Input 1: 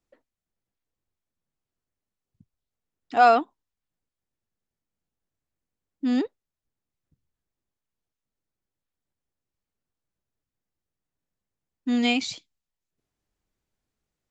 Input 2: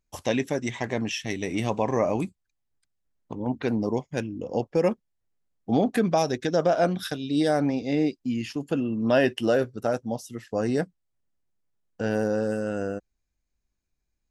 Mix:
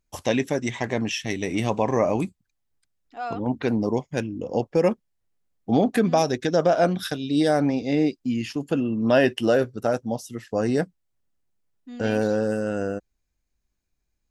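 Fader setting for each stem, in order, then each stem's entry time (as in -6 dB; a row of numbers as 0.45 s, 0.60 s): -15.5 dB, +2.5 dB; 0.00 s, 0.00 s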